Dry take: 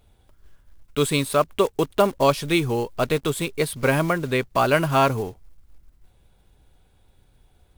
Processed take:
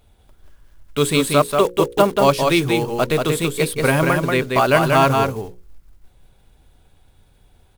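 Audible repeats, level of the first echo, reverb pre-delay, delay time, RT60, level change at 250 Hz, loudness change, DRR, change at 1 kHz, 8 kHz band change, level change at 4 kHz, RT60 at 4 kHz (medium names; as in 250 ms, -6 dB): 1, -4.0 dB, no reverb, 185 ms, no reverb, +4.5 dB, +4.5 dB, no reverb, +5.0 dB, +5.0 dB, +5.0 dB, no reverb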